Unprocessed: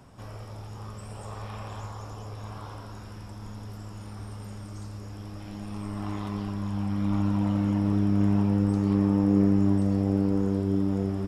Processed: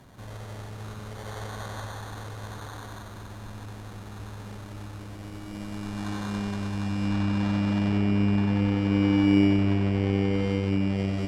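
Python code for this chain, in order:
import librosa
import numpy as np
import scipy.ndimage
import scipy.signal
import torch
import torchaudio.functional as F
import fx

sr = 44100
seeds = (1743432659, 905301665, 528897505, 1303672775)

y = fx.echo_thinned(x, sr, ms=94, feedback_pct=80, hz=310.0, wet_db=-4)
y = fx.sample_hold(y, sr, seeds[0], rate_hz=2600.0, jitter_pct=0)
y = fx.env_lowpass_down(y, sr, base_hz=2900.0, full_db=-19.5)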